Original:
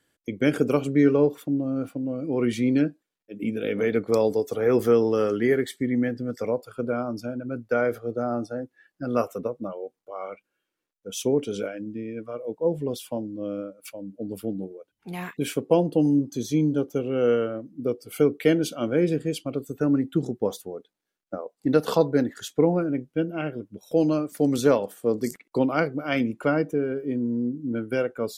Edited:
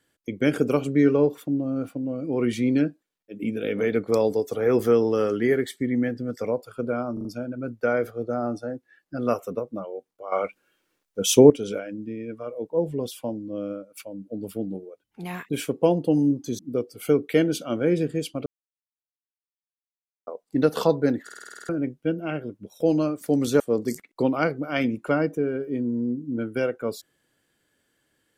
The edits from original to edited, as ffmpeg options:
-filter_complex "[0:a]asplit=19[a][b][c][d][e][f][g][h][i][j][k][l][m][n][o][p][q][r][s];[a]atrim=end=7.172[t];[b]atrim=start=7.128:end=7.172[u];[c]atrim=start=7.128:end=7.172[v];[d]atrim=start=7.128:end=10.202[w];[e]atrim=start=10.198:end=11.382,asetpts=PTS-STARTPTS,volume=10.5dB[x];[f]atrim=start=11.378:end=16.472[y];[g]atrim=start=17.698:end=19.57,asetpts=PTS-STARTPTS,afade=t=out:st=1.868:d=0.004:c=hsin[z];[h]atrim=start=19.57:end=21.38,asetpts=PTS-STARTPTS,volume=0[aa];[i]atrim=start=21.38:end=22.402,asetpts=PTS-STARTPTS,afade=t=in:d=0.004:c=hsin[ab];[j]atrim=start=22.348:end=22.402[ac];[k]atrim=start=22.348:end=22.402[ad];[l]atrim=start=22.348:end=22.402[ae];[m]atrim=start=22.348:end=22.402[af];[n]atrim=start=22.348:end=22.402[ag];[o]atrim=start=22.348:end=22.402[ah];[p]atrim=start=22.348:end=22.402[ai];[q]atrim=start=22.348:end=22.402[aj];[r]atrim=start=22.798:end=24.712[ak];[s]atrim=start=24.958[al];[t][u]acrossfade=d=0.004:c1=hsin:c2=hsin[am];[am][v]acrossfade=d=0.004:c1=hsin:c2=hsin[an];[an][w]acrossfade=d=0.004:c1=hsin:c2=hsin[ao];[ao][x]acrossfade=d=0.004:c1=hsin:c2=hsin[ap];[ap][y]acrossfade=d=0.004:c1=hsin:c2=hsin[aq];[z][aa][ab]concat=n=3:v=0:a=1[ar];[aq][ar]acrossfade=d=0.004:c1=hsin:c2=hsin[as];[as][ac]acrossfade=d=0.004:c1=hsin:c2=hsin[at];[at][ad]acrossfade=d=0.004:c1=hsin:c2=hsin[au];[au][ae]acrossfade=d=0.004:c1=hsin:c2=hsin[av];[av][af]acrossfade=d=0.004:c1=hsin:c2=hsin[aw];[aw][ag]acrossfade=d=0.004:c1=hsin:c2=hsin[ax];[ax][ah]acrossfade=d=0.004:c1=hsin:c2=hsin[ay];[ay][ai]acrossfade=d=0.004:c1=hsin:c2=hsin[az];[az][aj]acrossfade=d=0.004:c1=hsin:c2=hsin[ba];[ba][ak]acrossfade=d=0.004:c1=hsin:c2=hsin[bb];[bb][al]acrossfade=d=0.004:c1=hsin:c2=hsin"

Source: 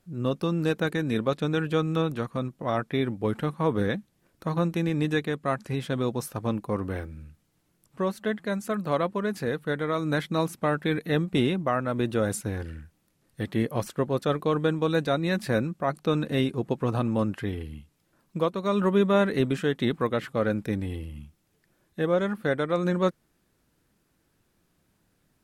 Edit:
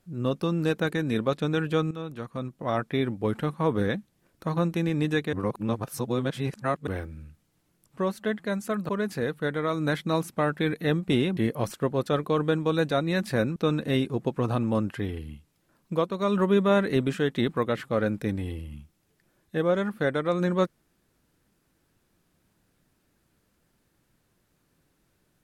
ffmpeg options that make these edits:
-filter_complex "[0:a]asplit=7[a][b][c][d][e][f][g];[a]atrim=end=1.91,asetpts=PTS-STARTPTS,afade=t=out:st=1.906:d=0.004:c=hsin:silence=0.211349[h];[b]atrim=start=1.91:end=5.332,asetpts=PTS-STARTPTS,afade=t=in:d=0.83:silence=0.211349[i];[c]atrim=start=5.328:end=6.872,asetpts=PTS-STARTPTS,areverse[j];[d]atrim=start=6.868:end=8.892[k];[e]atrim=start=9.138:end=11.622[l];[f]atrim=start=13.528:end=15.722[m];[g]atrim=start=15.998[n];[h][i]concat=n=2:v=0:a=1[o];[o][j]acrossfade=d=0.004:c1=hsin:c2=hsin[p];[p][k]acrossfade=d=0.004:c1=hsin:c2=hsin[q];[q][l]acrossfade=d=0.004:c1=hsin:c2=hsin[r];[r][m]acrossfade=d=0.004:c1=hsin:c2=hsin[s];[s][n]acrossfade=d=0.004:c1=hsin:c2=hsin"

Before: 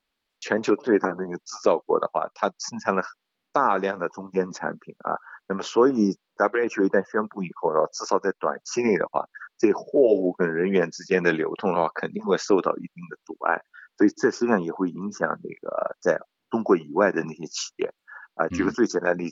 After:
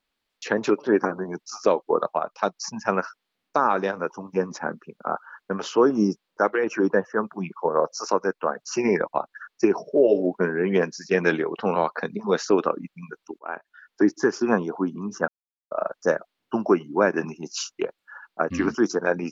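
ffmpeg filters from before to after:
-filter_complex "[0:a]asplit=4[a][b][c][d];[a]atrim=end=13.39,asetpts=PTS-STARTPTS,afade=t=out:st=13.386:d=0.004:c=hsin:silence=0.141254[e];[b]atrim=start=13.39:end=15.28,asetpts=PTS-STARTPTS,afade=t=in:d=0.83:c=qsin:silence=0.141254,afade=t=out:st=1.886:d=0.004:c=hsin[f];[c]atrim=start=15.28:end=15.71,asetpts=PTS-STARTPTS,volume=0[g];[d]atrim=start=15.71,asetpts=PTS-STARTPTS,afade=t=in:d=0.004:c=hsin[h];[e][f][g][h]concat=n=4:v=0:a=1"

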